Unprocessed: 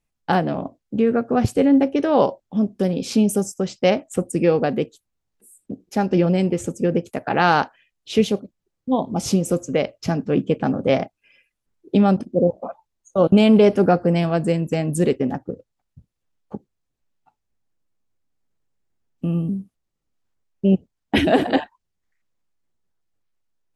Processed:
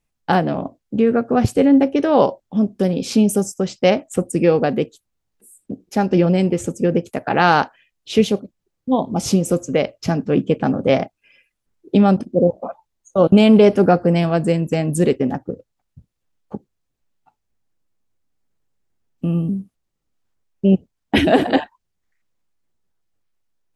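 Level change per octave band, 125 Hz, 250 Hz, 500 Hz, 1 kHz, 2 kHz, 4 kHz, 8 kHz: +2.5, +2.5, +2.5, +2.5, +2.5, +2.5, +2.5 dB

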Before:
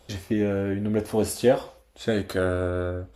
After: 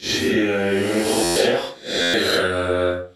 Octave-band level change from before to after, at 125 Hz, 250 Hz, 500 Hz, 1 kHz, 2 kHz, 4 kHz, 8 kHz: -1.5, +4.0, +5.0, +8.5, +13.0, +18.0, +11.5 dB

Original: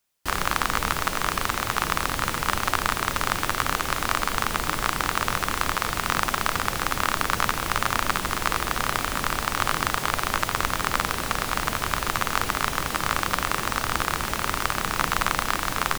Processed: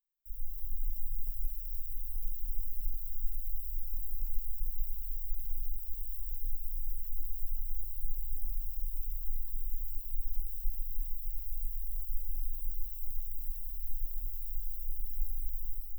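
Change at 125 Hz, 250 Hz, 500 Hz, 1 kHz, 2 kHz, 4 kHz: under -10 dB, under -35 dB, under -40 dB, under -40 dB, under -40 dB, under -40 dB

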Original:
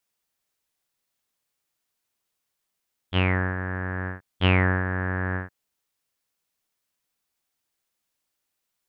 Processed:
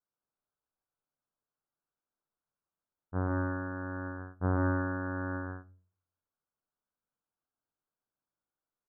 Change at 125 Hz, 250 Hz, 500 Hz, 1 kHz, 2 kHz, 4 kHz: -8.5 dB, -4.5 dB, -6.5 dB, -6.5 dB, -12.0 dB, under -40 dB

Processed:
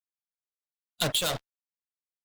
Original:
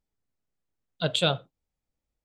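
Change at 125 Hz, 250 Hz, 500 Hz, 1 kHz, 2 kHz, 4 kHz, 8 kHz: -6.0, -5.0, -5.0, -2.0, -2.0, -0.5, +9.0 dB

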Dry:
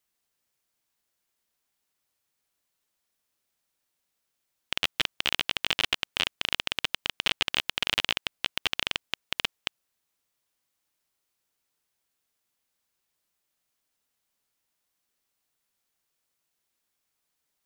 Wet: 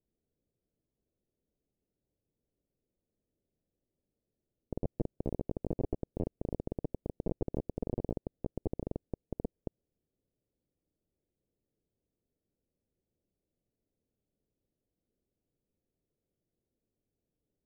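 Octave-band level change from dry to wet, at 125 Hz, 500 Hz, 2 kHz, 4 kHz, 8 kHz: +9.5 dB, +4.5 dB, under -40 dB, under -40 dB, under -35 dB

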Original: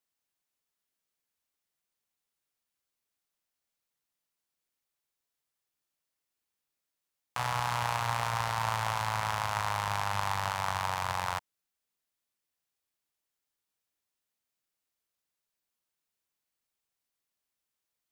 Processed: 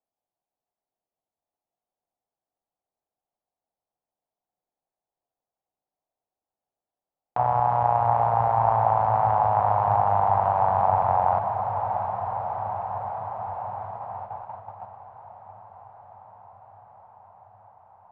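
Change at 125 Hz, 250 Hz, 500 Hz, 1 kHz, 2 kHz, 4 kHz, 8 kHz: +7.5 dB, +7.5 dB, +16.0 dB, +12.5 dB, -6.0 dB, under -20 dB, under -30 dB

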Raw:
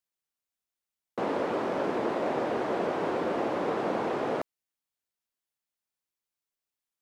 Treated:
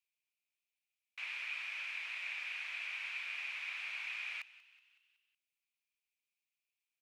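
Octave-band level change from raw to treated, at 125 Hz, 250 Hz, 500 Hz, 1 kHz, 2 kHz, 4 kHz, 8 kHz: under -40 dB, under -40 dB, under -40 dB, -25.5 dB, +1.0 dB, +1.0 dB, n/a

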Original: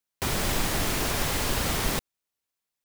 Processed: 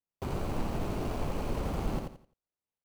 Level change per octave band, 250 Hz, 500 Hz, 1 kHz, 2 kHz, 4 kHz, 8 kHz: -3.0, -4.0, -7.0, -16.0, -19.0, -22.5 dB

